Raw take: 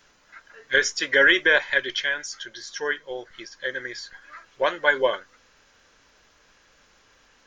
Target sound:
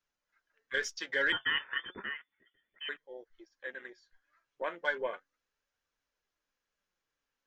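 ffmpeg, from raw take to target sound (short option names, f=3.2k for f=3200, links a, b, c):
-filter_complex "[0:a]afwtdn=0.02,asettb=1/sr,asplit=3[a][b][c];[a]atrim=end=1.324[d];[b]atrim=start=1.32:end=2.89,asetpts=PTS-STARTPTS,afade=t=in:d=0.004:c=qsin,afade=t=out:st=1.566:d=0.004:c=qsin,lowpass=f=3k:t=q:w=0.5098,lowpass=f=3k:t=q:w=0.6013,lowpass=f=3k:t=q:w=0.9,lowpass=f=3k:t=q:w=2.563,afreqshift=-3500[e];[c]atrim=start=2.886[f];[d][e]acrossfade=d=0.004:c1=hsin:c2=qsin[g];[g][f]acrossfade=d=0.004:c1=qsin:c2=hsin,flanger=delay=0.7:depth=6.9:regen=68:speed=0.34:shape=triangular,volume=-8.5dB"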